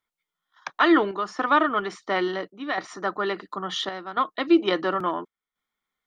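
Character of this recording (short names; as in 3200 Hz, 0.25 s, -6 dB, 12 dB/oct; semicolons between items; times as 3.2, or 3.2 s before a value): chopped level 0.72 Hz, depth 60%, duty 80%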